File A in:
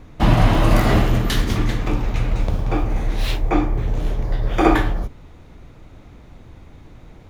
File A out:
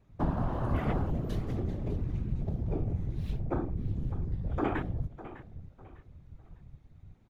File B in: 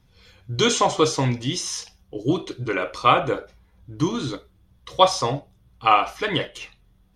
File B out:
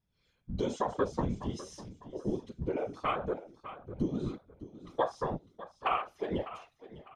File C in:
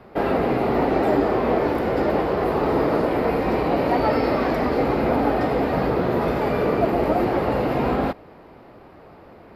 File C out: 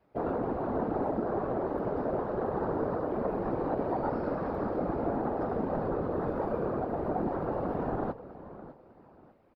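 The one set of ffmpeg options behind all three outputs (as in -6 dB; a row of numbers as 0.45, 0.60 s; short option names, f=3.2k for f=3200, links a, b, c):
-af "afwtdn=0.0794,acompressor=threshold=-23dB:ratio=3,aecho=1:1:602|1204|1806:0.178|0.0551|0.0171,afftfilt=real='hypot(re,im)*cos(2*PI*random(0))':imag='hypot(re,im)*sin(2*PI*random(1))':win_size=512:overlap=0.75"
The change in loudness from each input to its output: -13.5, -13.0, -11.0 LU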